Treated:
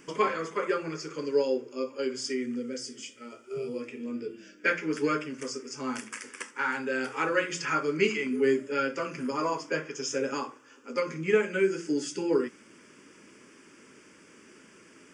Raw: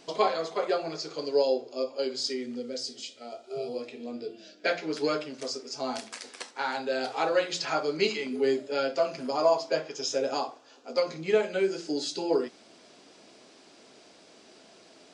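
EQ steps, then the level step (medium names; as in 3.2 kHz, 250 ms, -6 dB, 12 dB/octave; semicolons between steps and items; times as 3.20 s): static phaser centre 1.7 kHz, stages 4; +5.5 dB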